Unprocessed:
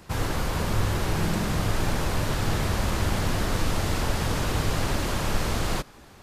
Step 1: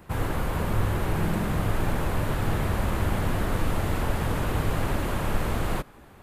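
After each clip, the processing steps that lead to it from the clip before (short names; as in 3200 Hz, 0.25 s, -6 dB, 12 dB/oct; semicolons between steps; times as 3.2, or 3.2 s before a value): bell 5400 Hz -12.5 dB 1.3 oct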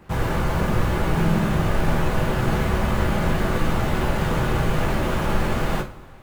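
median filter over 5 samples; in parallel at -7 dB: bit-crush 6-bit; on the sum: two-slope reverb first 0.27 s, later 2 s, from -22 dB, DRR 1 dB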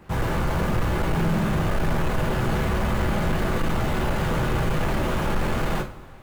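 soft clip -15.5 dBFS, distortion -16 dB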